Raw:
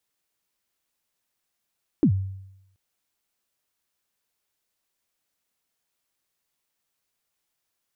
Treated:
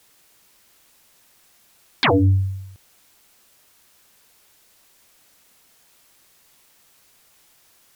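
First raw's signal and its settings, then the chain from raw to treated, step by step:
kick drum length 0.73 s, from 350 Hz, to 96 Hz, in 82 ms, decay 0.84 s, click off, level -12.5 dB
sine folder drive 19 dB, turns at -12.5 dBFS

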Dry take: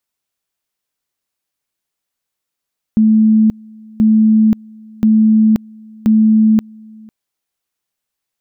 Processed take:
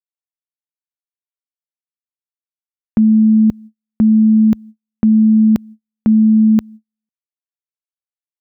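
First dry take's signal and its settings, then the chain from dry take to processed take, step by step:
two-level tone 218 Hz -6.5 dBFS, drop 27.5 dB, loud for 0.53 s, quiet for 0.50 s, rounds 4
HPF 41 Hz; gate -31 dBFS, range -49 dB

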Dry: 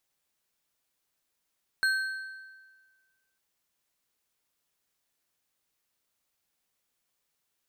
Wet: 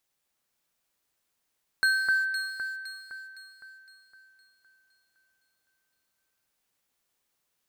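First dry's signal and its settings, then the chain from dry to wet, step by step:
metal hit bar, lowest mode 1550 Hz, modes 4, decay 1.53 s, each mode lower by 8.5 dB, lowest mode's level -21.5 dB
in parallel at -7.5 dB: sample gate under -36.5 dBFS; on the sum: echo with dull and thin repeats by turns 0.256 s, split 2100 Hz, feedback 66%, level -2 dB

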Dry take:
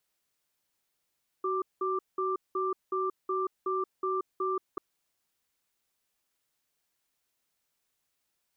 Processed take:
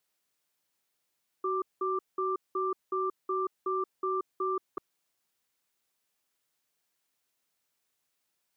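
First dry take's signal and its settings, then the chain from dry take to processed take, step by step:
cadence 376 Hz, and 1180 Hz, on 0.18 s, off 0.19 s, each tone -30 dBFS 3.34 s
HPF 110 Hz 6 dB/oct

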